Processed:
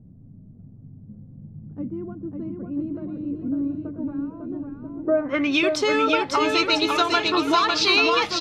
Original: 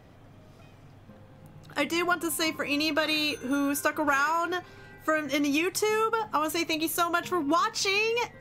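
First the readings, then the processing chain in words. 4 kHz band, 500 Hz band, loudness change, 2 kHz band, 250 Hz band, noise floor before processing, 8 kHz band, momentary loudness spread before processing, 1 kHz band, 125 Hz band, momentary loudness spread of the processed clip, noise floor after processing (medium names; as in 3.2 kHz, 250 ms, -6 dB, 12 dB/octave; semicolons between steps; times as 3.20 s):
+7.0 dB, +5.0 dB, +4.5 dB, +3.0 dB, +4.5 dB, -52 dBFS, -3.0 dB, 4 LU, +3.5 dB, +9.0 dB, 16 LU, -47 dBFS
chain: low-pass sweep 200 Hz -> 4.1 kHz, 4.89–5.58 s; bouncing-ball echo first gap 550 ms, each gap 0.8×, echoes 5; trim +3.5 dB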